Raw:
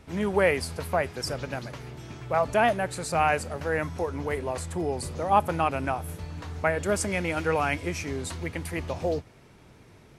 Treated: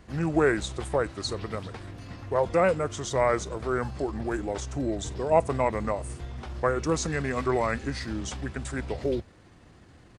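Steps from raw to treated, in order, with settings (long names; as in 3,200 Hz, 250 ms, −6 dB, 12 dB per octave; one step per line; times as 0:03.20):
pitch shifter −4 semitones
dynamic equaliser 1,800 Hz, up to −5 dB, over −49 dBFS, Q 7.4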